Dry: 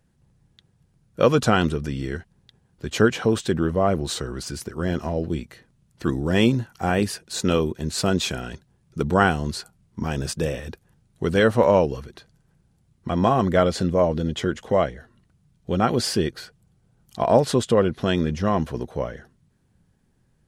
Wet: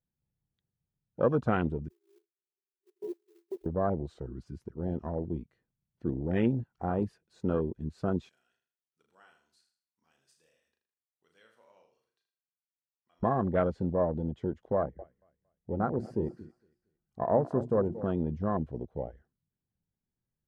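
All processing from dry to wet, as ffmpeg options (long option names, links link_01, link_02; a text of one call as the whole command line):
ffmpeg -i in.wav -filter_complex "[0:a]asettb=1/sr,asplit=3[link_01][link_02][link_03];[link_01]atrim=end=1.884[link_04];[link_02]atrim=start=1.88:end=3.66,asetpts=PTS-STARTPTS,afade=type=in:duration=0.004:curve=qsin,afade=type=out:start_time=1.776:duration=0.004:curve=qsin,asuperpass=centerf=380:order=20:qfactor=4.6,acrusher=bits=4:mode=log:mix=0:aa=0.000001,aemphasis=mode=production:type=riaa[link_05];[link_03]atrim=start=3.656[link_06];[link_04][link_05]acrossfade=duration=0.004:curve1=hsin:curve2=qsin[link_07];[link_07][link_06]acrossfade=duration=0.004:curve1=qsin:curve2=hsin,asettb=1/sr,asplit=3[link_08][link_09][link_10];[link_08]atrim=end=8.294[link_11];[link_09]atrim=start=8.29:end=13.23,asetpts=PTS-STARTPTS,afade=type=in:duration=0.004:curve=qsin,afade=type=out:start_time=4.936:duration=0.004:curve=qsin,aderivative,asplit=2[link_12][link_13];[link_13]adelay=37,volume=-5dB[link_14];[link_12][link_14]amix=inputs=2:normalize=0,atrim=end_sample=217854,aecho=1:1:79|158|237|316:0.355|0.121|0.041|0.0139,atrim=end_sample=217854[link_15];[link_10]atrim=start=13.226[link_16];[link_11][link_15]acrossfade=duration=0.004:curve1=hsin:curve2=qsin[link_17];[link_17][link_16]acrossfade=duration=0.004:curve1=qsin:curve2=hsin,asettb=1/sr,asplit=3[link_18][link_19][link_20];[link_18]atrim=end=14.764[link_21];[link_19]atrim=start=14.76:end=18.05,asetpts=PTS-STARTPTS,afade=type=in:duration=0.004:curve=qsin,afade=type=out:start_time=3.286:duration=0.004:curve=qsin,equalizer=frequency=3500:width=1.6:gain=-12.5,bandreject=frequency=60:width_type=h:width=6,bandreject=frequency=120:width_type=h:width=6,bandreject=frequency=180:width_type=h:width=6,bandreject=frequency=240:width_type=h:width=6,bandreject=frequency=300:width_type=h:width=6,bandreject=frequency=360:width_type=h:width=6,aecho=1:1:229|458|687:0.2|0.0678|0.0231,atrim=end_sample=145089[link_22];[link_20]atrim=start=18.046[link_23];[link_21][link_22]acrossfade=duration=0.004:curve1=hsin:curve2=qsin[link_24];[link_24][link_23]acrossfade=duration=0.004:curve1=qsin:curve2=hsin,afwtdn=0.0631,lowpass=frequency=1600:poles=1,volume=-8dB" out.wav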